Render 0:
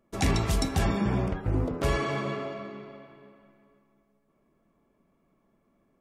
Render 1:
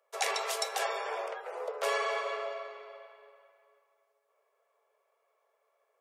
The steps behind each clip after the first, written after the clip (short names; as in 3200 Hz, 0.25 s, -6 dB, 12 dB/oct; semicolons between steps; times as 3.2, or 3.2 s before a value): steep high-pass 430 Hz 96 dB/oct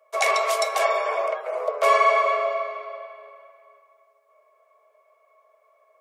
small resonant body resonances 630/1100/2200 Hz, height 18 dB, ringing for 75 ms; gain +4.5 dB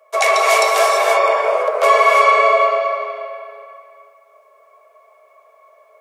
in parallel at 0 dB: limiter -17 dBFS, peak gain reduction 9.5 dB; on the sum: non-linear reverb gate 0.36 s rising, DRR 0 dB; gain +2 dB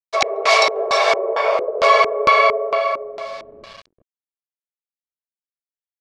sample gate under -36 dBFS; LFO low-pass square 2.2 Hz 360–4600 Hz; gain -1 dB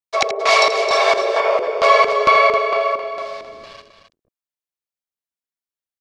loudspeakers at several distances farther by 28 m -11 dB, 91 m -9 dB